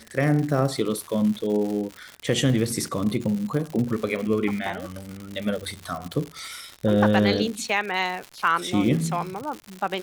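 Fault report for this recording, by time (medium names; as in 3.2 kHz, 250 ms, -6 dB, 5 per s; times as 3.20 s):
crackle 160 per s -29 dBFS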